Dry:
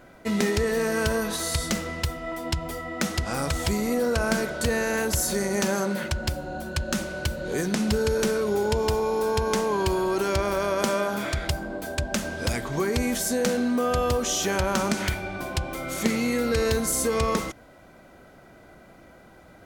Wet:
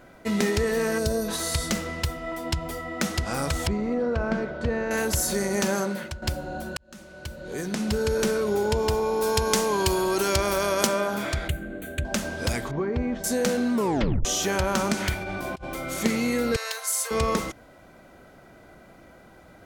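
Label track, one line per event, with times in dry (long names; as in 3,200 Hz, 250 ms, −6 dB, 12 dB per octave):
0.980000	1.280000	gain on a spectral selection 720–3,500 Hz −11 dB
3.670000	4.910000	head-to-tape spacing loss at 10 kHz 32 dB
5.790000	6.220000	fade out, to −12 dB
6.770000	8.220000	fade in
9.220000	10.870000	high-shelf EQ 3,200 Hz +9.5 dB
11.480000	12.050000	phaser with its sweep stopped centre 2,200 Hz, stages 4
12.710000	13.240000	head-to-tape spacing loss at 10 kHz 42 dB
13.740000	13.740000	tape stop 0.51 s
15.210000	15.640000	compressor whose output falls as the input rises −33 dBFS, ratio −0.5
16.560000	17.110000	Bessel high-pass filter 1,000 Hz, order 8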